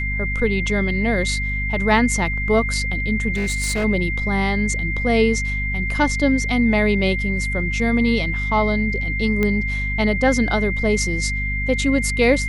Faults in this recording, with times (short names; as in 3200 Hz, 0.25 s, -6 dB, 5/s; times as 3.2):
hum 50 Hz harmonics 5 -25 dBFS
tone 2100 Hz -24 dBFS
3.34–3.85 clipped -17.5 dBFS
9.43 pop -9 dBFS